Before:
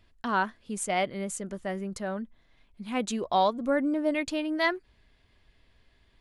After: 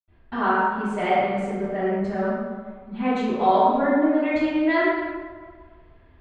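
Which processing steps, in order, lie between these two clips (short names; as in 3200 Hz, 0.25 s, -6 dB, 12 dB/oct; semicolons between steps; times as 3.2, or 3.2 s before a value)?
LPF 2400 Hz 12 dB/oct; in parallel at +1 dB: compressor, threshold -34 dBFS, peak gain reduction 13.5 dB; on the sum: reverb RT60 1.8 s, pre-delay 78 ms; mismatched tape noise reduction decoder only; gain -6 dB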